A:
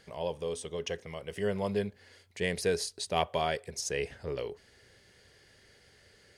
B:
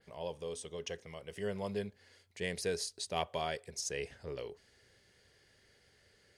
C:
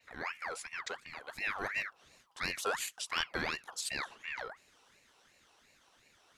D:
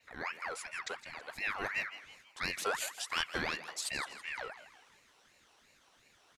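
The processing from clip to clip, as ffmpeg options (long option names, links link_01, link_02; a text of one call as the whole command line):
ffmpeg -i in.wav -af "adynamicequalizer=threshold=0.00251:dfrequency=6500:dqfactor=0.7:tfrequency=6500:tqfactor=0.7:attack=5:release=100:ratio=0.375:range=2:mode=boostabove:tftype=bell,volume=-6.5dB" out.wav
ffmpeg -i in.wav -af "aeval=exprs='val(0)*sin(2*PI*1600*n/s+1600*0.45/2.8*sin(2*PI*2.8*n/s))':channel_layout=same,volume=3.5dB" out.wav
ffmpeg -i in.wav -filter_complex "[0:a]asplit=5[link_01][link_02][link_03][link_04][link_05];[link_02]adelay=163,afreqshift=140,volume=-13.5dB[link_06];[link_03]adelay=326,afreqshift=280,volume=-20.8dB[link_07];[link_04]adelay=489,afreqshift=420,volume=-28.2dB[link_08];[link_05]adelay=652,afreqshift=560,volume=-35.5dB[link_09];[link_01][link_06][link_07][link_08][link_09]amix=inputs=5:normalize=0" out.wav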